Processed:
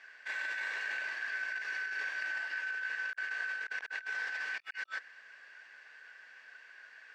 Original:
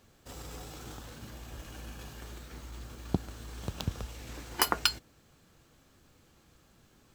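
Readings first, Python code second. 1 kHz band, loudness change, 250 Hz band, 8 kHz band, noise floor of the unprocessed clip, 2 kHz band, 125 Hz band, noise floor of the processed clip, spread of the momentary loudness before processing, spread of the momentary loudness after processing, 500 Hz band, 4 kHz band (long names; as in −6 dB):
−10.5 dB, 0.0 dB, below −25 dB, −16.0 dB, −64 dBFS, +11.0 dB, below −40 dB, −57 dBFS, 17 LU, 17 LU, −12.5 dB, −11.0 dB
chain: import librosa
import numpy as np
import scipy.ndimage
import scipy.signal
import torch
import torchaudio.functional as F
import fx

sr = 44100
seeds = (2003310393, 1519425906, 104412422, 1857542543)

y = fx.band_shuffle(x, sr, order='3142')
y = fx.over_compress(y, sr, threshold_db=-44.0, ratio=-0.5)
y = fx.bandpass_edges(y, sr, low_hz=600.0, high_hz=2900.0)
y = y * 10.0 ** (5.0 / 20.0)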